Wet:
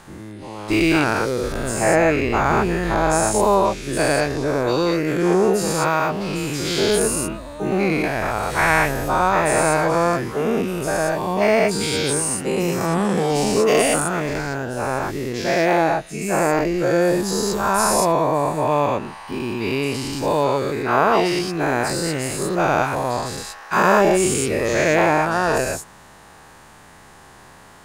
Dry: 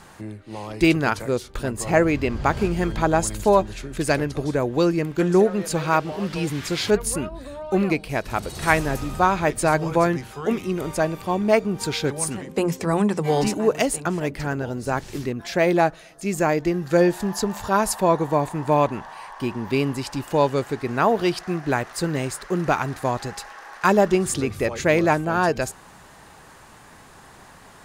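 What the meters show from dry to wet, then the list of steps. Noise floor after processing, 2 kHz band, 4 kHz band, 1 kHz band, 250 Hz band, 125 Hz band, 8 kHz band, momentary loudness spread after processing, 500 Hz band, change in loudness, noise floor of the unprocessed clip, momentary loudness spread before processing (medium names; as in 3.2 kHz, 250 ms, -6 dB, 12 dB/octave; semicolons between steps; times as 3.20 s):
-46 dBFS, +4.5 dB, +5.0 dB, +4.0 dB, +1.5 dB, +0.5 dB, +6.0 dB, 8 LU, +3.0 dB, +3.0 dB, -47 dBFS, 9 LU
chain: every event in the spectrogram widened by 240 ms; trim -4 dB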